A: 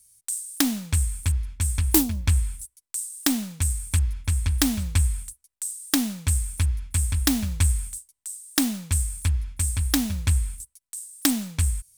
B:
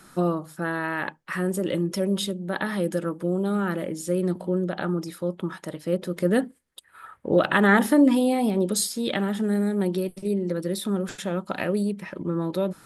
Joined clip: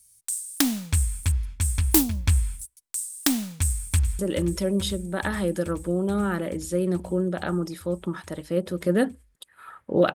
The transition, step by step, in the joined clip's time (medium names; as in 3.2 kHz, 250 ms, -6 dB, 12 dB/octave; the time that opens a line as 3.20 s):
A
3.55–4.19 s: echo throw 430 ms, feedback 80%, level -12.5 dB
4.19 s: go over to B from 1.55 s